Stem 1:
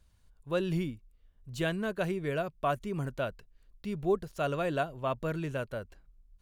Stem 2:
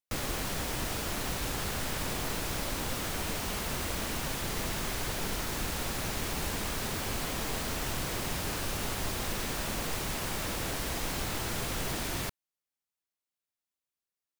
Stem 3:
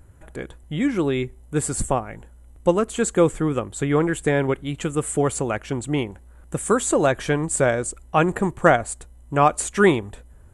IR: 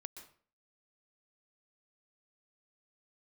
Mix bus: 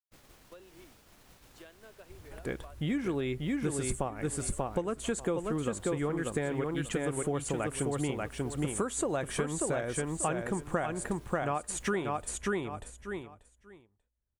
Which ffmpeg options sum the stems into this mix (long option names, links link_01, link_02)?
-filter_complex "[0:a]highpass=frequency=300:width=0.5412,highpass=frequency=300:width=1.3066,volume=-10.5dB[link_01];[1:a]volume=-17dB[link_02];[2:a]bandreject=frequency=7600:width=17,adelay=2100,volume=-3dB,asplit=2[link_03][link_04];[link_04]volume=-4dB[link_05];[link_01][link_02]amix=inputs=2:normalize=0,agate=range=-33dB:threshold=-43dB:ratio=3:detection=peak,acompressor=threshold=-49dB:ratio=8,volume=0dB[link_06];[link_05]aecho=0:1:588|1176|1764:1|0.16|0.0256[link_07];[link_03][link_06][link_07]amix=inputs=3:normalize=0,acompressor=threshold=-28dB:ratio=10"